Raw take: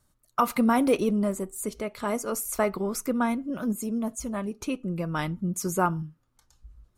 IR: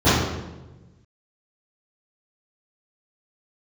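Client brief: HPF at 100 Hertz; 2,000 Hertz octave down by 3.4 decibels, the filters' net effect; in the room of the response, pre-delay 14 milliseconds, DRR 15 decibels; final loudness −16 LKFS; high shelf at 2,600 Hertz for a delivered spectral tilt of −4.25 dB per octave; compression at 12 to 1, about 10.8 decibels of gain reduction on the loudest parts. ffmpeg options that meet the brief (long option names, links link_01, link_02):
-filter_complex "[0:a]highpass=100,equalizer=frequency=2000:width_type=o:gain=-8.5,highshelf=frequency=2600:gain=8.5,acompressor=threshold=-29dB:ratio=12,asplit=2[link_01][link_02];[1:a]atrim=start_sample=2205,adelay=14[link_03];[link_02][link_03]afir=irnorm=-1:irlink=0,volume=-39dB[link_04];[link_01][link_04]amix=inputs=2:normalize=0,volume=17dB"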